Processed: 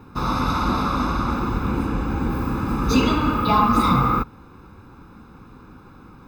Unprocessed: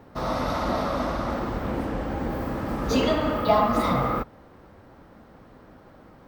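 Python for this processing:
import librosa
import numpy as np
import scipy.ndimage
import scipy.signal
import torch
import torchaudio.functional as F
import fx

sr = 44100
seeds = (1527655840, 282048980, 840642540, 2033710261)

y = x + 0.82 * np.pad(x, (int(0.8 * sr / 1000.0), 0))[:len(x)]
y = y * 10.0 ** (2.5 / 20.0)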